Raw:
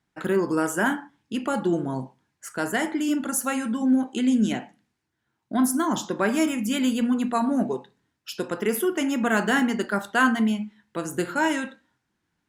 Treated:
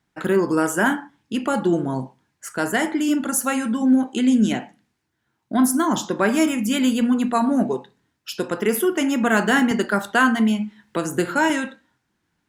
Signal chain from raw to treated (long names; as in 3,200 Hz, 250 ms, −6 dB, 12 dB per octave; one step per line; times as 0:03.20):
0:09.71–0:11.50: multiband upward and downward compressor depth 40%
level +4 dB